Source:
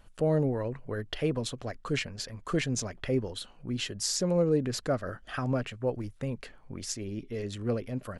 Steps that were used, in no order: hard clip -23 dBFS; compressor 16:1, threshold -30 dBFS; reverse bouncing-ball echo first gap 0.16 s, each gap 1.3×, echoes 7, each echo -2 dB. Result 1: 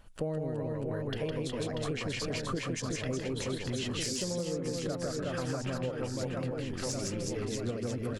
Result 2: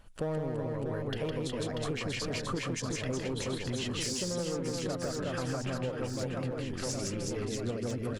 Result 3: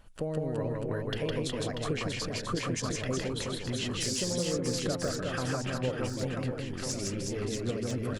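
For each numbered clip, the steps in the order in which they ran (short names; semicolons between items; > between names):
reverse bouncing-ball echo > compressor > hard clip; hard clip > reverse bouncing-ball echo > compressor; compressor > hard clip > reverse bouncing-ball echo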